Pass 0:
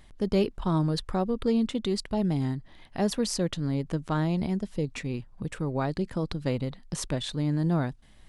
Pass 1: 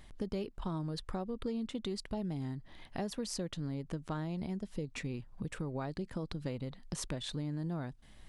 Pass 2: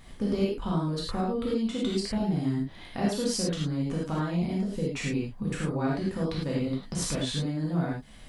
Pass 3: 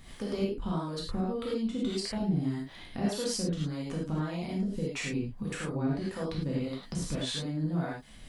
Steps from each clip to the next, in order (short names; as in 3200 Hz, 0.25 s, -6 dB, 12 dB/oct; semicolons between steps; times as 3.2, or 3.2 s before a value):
compressor 4:1, threshold -35 dBFS, peak gain reduction 13.5 dB; gain -1 dB
non-linear reverb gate 0.13 s flat, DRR -5.5 dB; gain +3 dB
harmonic tremolo 1.7 Hz, depth 70%, crossover 410 Hz; mismatched tape noise reduction encoder only